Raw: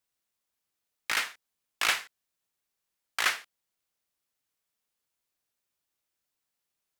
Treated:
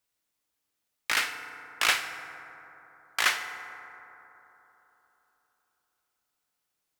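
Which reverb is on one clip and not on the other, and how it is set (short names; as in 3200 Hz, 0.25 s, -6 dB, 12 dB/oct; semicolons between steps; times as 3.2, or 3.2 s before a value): FDN reverb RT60 3.6 s, high-frequency decay 0.3×, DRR 7 dB; gain +2 dB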